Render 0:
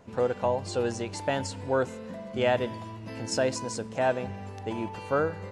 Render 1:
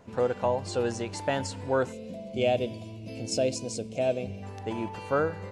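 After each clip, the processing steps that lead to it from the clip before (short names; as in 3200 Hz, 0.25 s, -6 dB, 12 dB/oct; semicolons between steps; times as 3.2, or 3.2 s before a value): spectral gain 1.92–4.43, 770–2100 Hz -16 dB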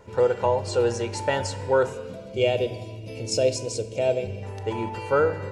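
reverb RT60 1.2 s, pre-delay 5 ms, DRR 12 dB; gain +2.5 dB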